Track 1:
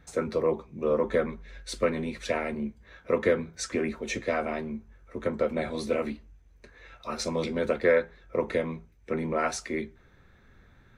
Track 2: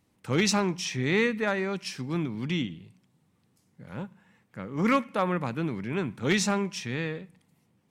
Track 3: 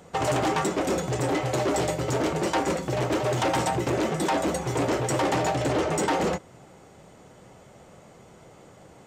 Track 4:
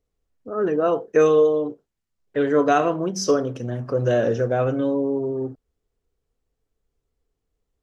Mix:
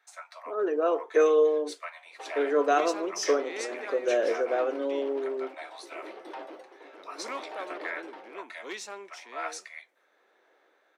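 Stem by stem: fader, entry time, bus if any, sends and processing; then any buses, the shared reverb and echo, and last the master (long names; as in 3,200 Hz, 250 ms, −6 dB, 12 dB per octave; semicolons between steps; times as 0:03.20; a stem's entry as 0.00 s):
−5.5 dB, 0.00 s, no send, Butterworth high-pass 630 Hz 96 dB per octave
−12.0 dB, 2.40 s, no send, no processing
−15.0 dB, 2.05 s, no send, amplitude tremolo 0.71 Hz, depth 68%; moving average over 6 samples
−5.0 dB, 0.00 s, no send, no processing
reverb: not used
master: Butterworth high-pass 320 Hz 36 dB per octave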